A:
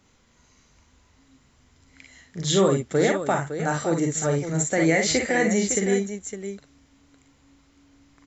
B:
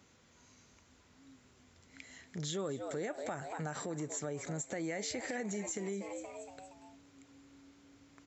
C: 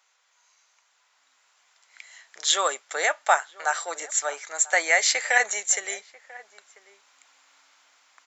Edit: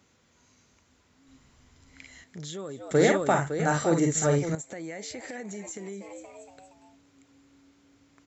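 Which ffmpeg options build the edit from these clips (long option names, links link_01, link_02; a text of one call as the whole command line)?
ffmpeg -i take0.wav -i take1.wav -filter_complex "[0:a]asplit=2[link_01][link_02];[1:a]asplit=3[link_03][link_04][link_05];[link_03]atrim=end=1.282[link_06];[link_01]atrim=start=1.278:end=2.242[link_07];[link_04]atrim=start=2.238:end=2.912[link_08];[link_02]atrim=start=2.908:end=4.552[link_09];[link_05]atrim=start=4.548[link_10];[link_06][link_07]acrossfade=duration=0.004:curve1=hsin:curve2=hsin[link_11];[link_11][link_08]acrossfade=duration=0.004:curve1=hsin:curve2=hsin[link_12];[link_12][link_09]acrossfade=duration=0.004:curve1=hsin:curve2=hsin[link_13];[link_13][link_10]acrossfade=duration=0.004:curve1=hsin:curve2=hsin" out.wav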